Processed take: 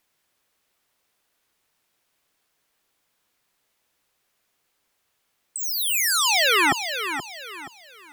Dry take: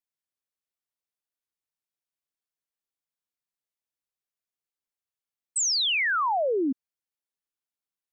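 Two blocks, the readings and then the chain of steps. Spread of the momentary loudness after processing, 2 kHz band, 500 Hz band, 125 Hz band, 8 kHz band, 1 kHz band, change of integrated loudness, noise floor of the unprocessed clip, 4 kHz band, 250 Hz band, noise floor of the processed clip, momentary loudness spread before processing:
19 LU, +6.0 dB, -2.0 dB, n/a, +4.5 dB, +3.0 dB, +4.0 dB, under -85 dBFS, +5.0 dB, -2.5 dB, -73 dBFS, 10 LU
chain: sine folder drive 14 dB, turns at -21.5 dBFS; tone controls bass -3 dB, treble -5 dB; lo-fi delay 0.476 s, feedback 35%, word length 10-bit, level -9 dB; gain +6 dB

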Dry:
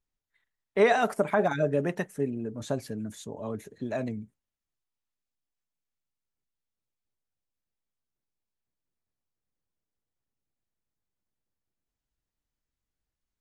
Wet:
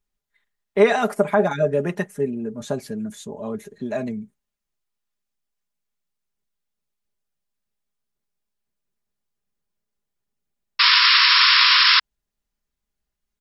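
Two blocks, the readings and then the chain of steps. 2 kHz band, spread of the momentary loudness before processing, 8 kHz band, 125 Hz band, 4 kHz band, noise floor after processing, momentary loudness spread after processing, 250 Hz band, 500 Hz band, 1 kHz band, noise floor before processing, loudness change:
+16.5 dB, 14 LU, +4.5 dB, +4.0 dB, +31.0 dB, -83 dBFS, 20 LU, +5.5 dB, +6.0 dB, +9.0 dB, under -85 dBFS, +13.5 dB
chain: comb 4.9 ms, depth 55%; painted sound noise, 10.79–12, 960–5500 Hz -18 dBFS; gain +3.5 dB

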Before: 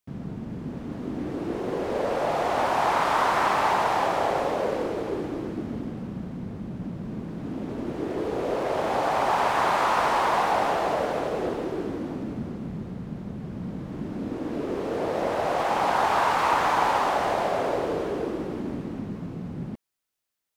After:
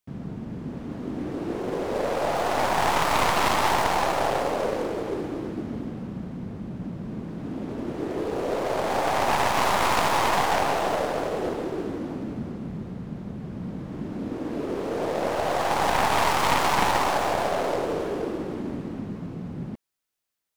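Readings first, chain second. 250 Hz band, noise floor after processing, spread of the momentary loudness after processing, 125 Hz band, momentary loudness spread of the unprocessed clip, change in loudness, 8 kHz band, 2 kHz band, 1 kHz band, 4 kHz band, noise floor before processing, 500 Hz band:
+0.5 dB, -38 dBFS, 13 LU, +1.0 dB, 13 LU, +0.5 dB, +7.5 dB, +1.5 dB, -0.5 dB, +4.5 dB, -38 dBFS, 0.0 dB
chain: tracing distortion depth 0.31 ms

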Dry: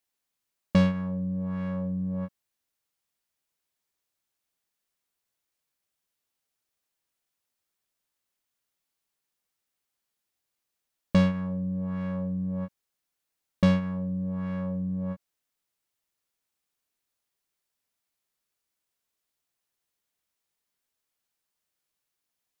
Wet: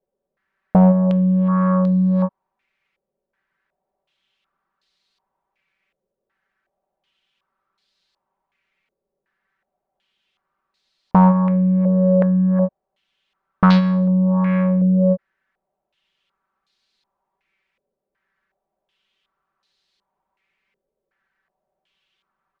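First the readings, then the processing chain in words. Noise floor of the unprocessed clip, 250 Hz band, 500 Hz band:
-84 dBFS, +12.5 dB, +13.5 dB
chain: comb 5.2 ms, depth 87%; overloaded stage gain 18 dB; stepped low-pass 2.7 Hz 510–4200 Hz; gain +9 dB

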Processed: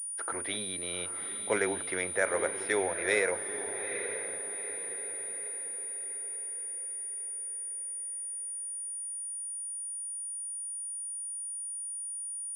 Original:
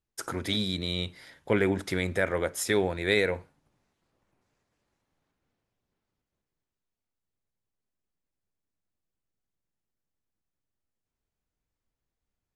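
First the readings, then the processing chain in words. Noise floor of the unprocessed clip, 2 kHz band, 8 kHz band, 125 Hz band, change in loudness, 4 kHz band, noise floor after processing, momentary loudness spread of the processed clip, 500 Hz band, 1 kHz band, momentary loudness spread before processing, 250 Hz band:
under -85 dBFS, -0.5 dB, +14.0 dB, under -15 dB, -4.5 dB, -8.5 dB, -38 dBFS, 6 LU, -3.0 dB, 0.0 dB, 9 LU, -9.5 dB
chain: three-band isolator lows -18 dB, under 390 Hz, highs -16 dB, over 3200 Hz; diffused feedback echo 0.864 s, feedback 46%, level -9 dB; pulse-width modulation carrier 9500 Hz

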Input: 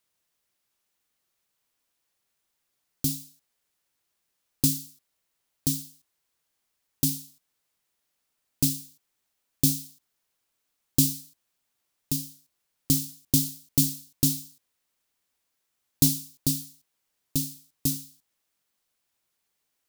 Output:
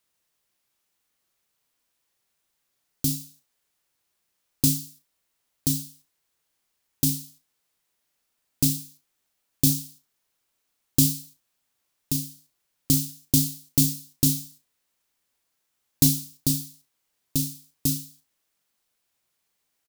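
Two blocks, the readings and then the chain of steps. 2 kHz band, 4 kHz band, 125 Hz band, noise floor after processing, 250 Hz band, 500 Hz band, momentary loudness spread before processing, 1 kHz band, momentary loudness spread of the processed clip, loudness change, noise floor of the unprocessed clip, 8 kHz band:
+2.5 dB, +2.0 dB, +3.0 dB, -77 dBFS, +2.5 dB, +2.0 dB, 12 LU, n/a, 12 LU, +2.0 dB, -79 dBFS, +2.0 dB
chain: hard clip -7.5 dBFS, distortion -35 dB; on a send: early reflections 34 ms -10 dB, 68 ms -17 dB; on the sum: gain +1.5 dB

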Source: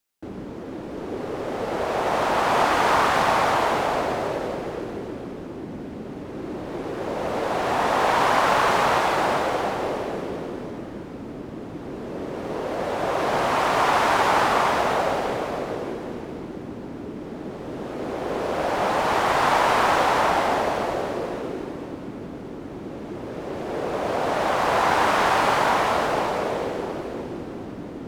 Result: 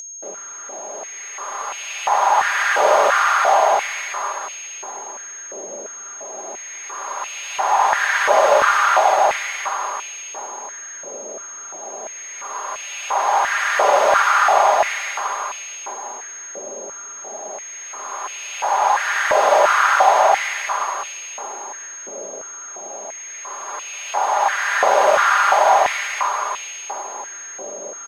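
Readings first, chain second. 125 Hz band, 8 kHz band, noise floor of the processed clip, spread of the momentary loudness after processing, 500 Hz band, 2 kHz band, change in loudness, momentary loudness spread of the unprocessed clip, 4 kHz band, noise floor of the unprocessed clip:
under -20 dB, +14.5 dB, -34 dBFS, 17 LU, +2.5 dB, +6.0 dB, +5.0 dB, 16 LU, +1.5 dB, -36 dBFS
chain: whine 6500 Hz -27 dBFS; comb 5 ms, depth 49%; stepped high-pass 2.9 Hz 560–2600 Hz; gain -1 dB

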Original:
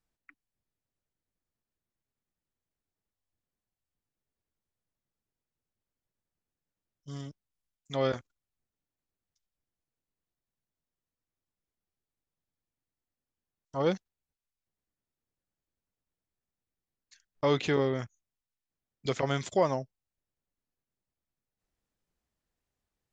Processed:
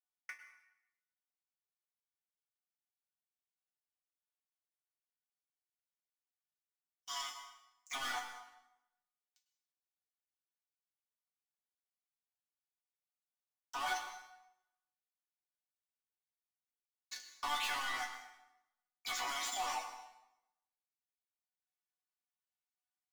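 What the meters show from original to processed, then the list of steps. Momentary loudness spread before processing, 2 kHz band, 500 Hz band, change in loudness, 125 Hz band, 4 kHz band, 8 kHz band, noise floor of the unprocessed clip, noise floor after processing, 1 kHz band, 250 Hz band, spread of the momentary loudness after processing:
16 LU, +1.0 dB, -24.5 dB, -9.0 dB, under -35 dB, +1.0 dB, n/a, under -85 dBFS, under -85 dBFS, -2.5 dB, -26.5 dB, 18 LU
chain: steep high-pass 710 Hz 96 dB/oct; limiter -28 dBFS, peak gain reduction 7.5 dB; sample leveller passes 5; compressor 4:1, threshold -36 dBFS, peak gain reduction 5.5 dB; resonator bank B3 minor, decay 0.25 s; plate-style reverb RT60 0.89 s, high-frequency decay 0.85×, pre-delay 90 ms, DRR 8 dB; gain +14.5 dB

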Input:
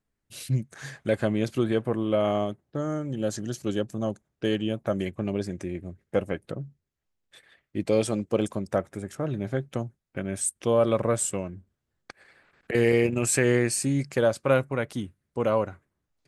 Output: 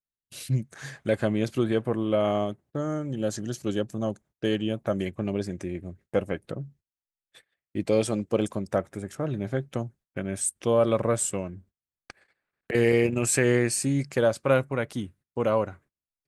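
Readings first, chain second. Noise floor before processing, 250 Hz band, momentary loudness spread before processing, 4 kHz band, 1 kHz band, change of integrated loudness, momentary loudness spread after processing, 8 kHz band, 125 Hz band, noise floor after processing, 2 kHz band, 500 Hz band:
-82 dBFS, 0.0 dB, 13 LU, 0.0 dB, 0.0 dB, 0.0 dB, 13 LU, 0.0 dB, 0.0 dB, under -85 dBFS, 0.0 dB, 0.0 dB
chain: gate -53 dBFS, range -22 dB

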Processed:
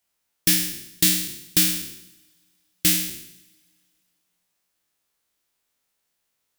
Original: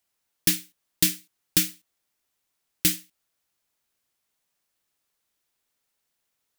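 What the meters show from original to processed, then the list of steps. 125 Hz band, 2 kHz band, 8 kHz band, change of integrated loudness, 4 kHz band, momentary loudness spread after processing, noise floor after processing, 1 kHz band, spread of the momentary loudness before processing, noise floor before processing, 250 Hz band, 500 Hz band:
+4.0 dB, +5.0 dB, +4.5 dB, +4.0 dB, +5.0 dB, 11 LU, -76 dBFS, +5.0 dB, 8 LU, -79 dBFS, +4.0 dB, +2.5 dB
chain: spectral trails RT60 0.78 s; two-slope reverb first 0.22 s, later 2.5 s, from -18 dB, DRR 19.5 dB

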